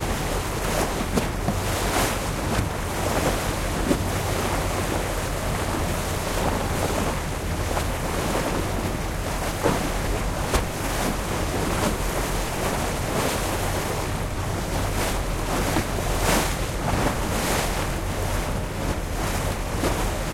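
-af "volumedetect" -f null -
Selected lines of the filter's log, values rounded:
mean_volume: -24.5 dB
max_volume: -5.3 dB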